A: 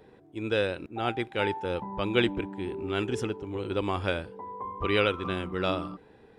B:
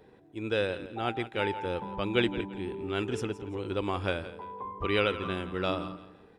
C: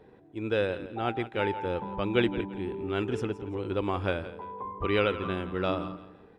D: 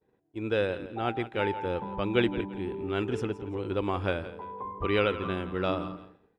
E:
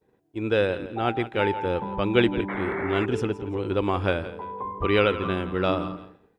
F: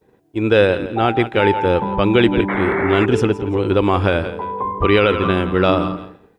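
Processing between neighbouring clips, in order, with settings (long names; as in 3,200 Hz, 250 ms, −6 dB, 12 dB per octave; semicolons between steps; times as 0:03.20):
repeating echo 169 ms, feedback 30%, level −14.5 dB; level −2 dB
high-shelf EQ 3,700 Hz −10.5 dB; level +2 dB
downward expander −44 dBFS
sound drawn into the spectrogram noise, 0:02.48–0:03.06, 270–2,300 Hz −38 dBFS; level +5 dB
boost into a limiter +12.5 dB; level −2.5 dB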